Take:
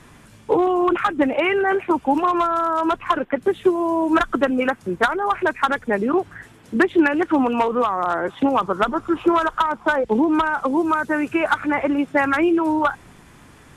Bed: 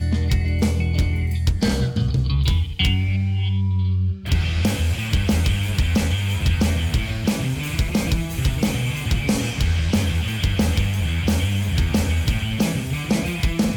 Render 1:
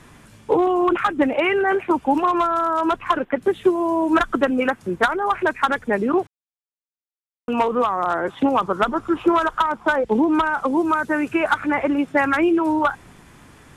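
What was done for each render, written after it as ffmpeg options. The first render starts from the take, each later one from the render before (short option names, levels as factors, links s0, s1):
-filter_complex "[0:a]asplit=3[s0][s1][s2];[s0]atrim=end=6.27,asetpts=PTS-STARTPTS,afade=t=out:st=6.266:d=0.004:c=hsin[s3];[s1]atrim=start=6.27:end=7.48,asetpts=PTS-STARTPTS,volume=0[s4];[s2]atrim=start=7.48,asetpts=PTS-STARTPTS,afade=t=in:d=0.004:c=hsin[s5];[s3][s4][s5]concat=n=3:v=0:a=1"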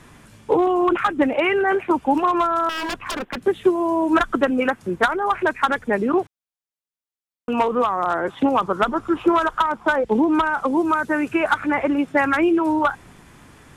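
-filter_complex "[0:a]asettb=1/sr,asplit=3[s0][s1][s2];[s0]atrim=end=2.694[s3];[s1]atrim=start=2.69:end=3.37,asetpts=PTS-STARTPTS,afade=t=in:d=0.004:c=qsin,afade=t=out:st=0.676:d=0.004:c=qsin,aeval=exprs='0.0891*(abs(mod(val(0)/0.0891+3,4)-2)-1)':c=same[s4];[s2]atrim=start=3.366[s5];[s3][s4]acrossfade=d=0.004:c1=hsin:c2=qsin[s6];[s6][s5]acrossfade=d=0.004:c1=qsin:c2=hsin"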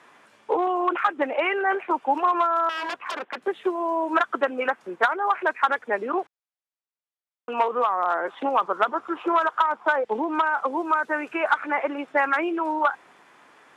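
-af "highpass=570,aemphasis=mode=reproduction:type=75kf"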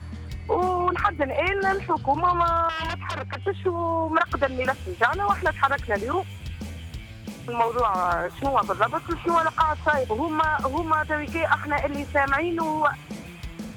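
-filter_complex "[1:a]volume=0.158[s0];[0:a][s0]amix=inputs=2:normalize=0"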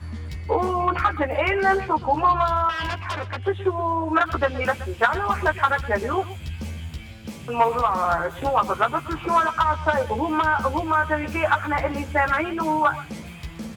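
-filter_complex "[0:a]asplit=2[s0][s1];[s1]adelay=13,volume=0.631[s2];[s0][s2]amix=inputs=2:normalize=0,aecho=1:1:124:0.158"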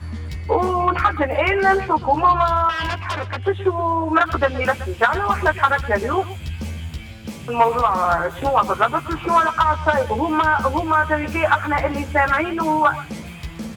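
-af "volume=1.5,alimiter=limit=0.708:level=0:latency=1"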